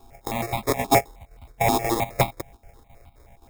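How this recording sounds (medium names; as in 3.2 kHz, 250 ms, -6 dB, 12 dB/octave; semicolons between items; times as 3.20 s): a buzz of ramps at a fixed pitch in blocks of 64 samples; chopped level 3.8 Hz, depth 60%, duty 75%; aliases and images of a low sample rate 1.5 kHz, jitter 0%; notches that jump at a steady rate 9.5 Hz 550–1700 Hz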